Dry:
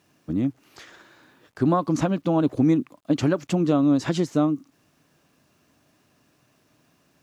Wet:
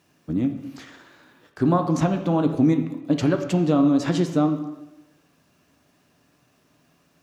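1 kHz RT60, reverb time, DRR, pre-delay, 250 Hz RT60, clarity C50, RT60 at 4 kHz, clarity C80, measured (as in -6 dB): 0.95 s, 1.0 s, 5.0 dB, 5 ms, 1.0 s, 9.0 dB, 0.90 s, 11.0 dB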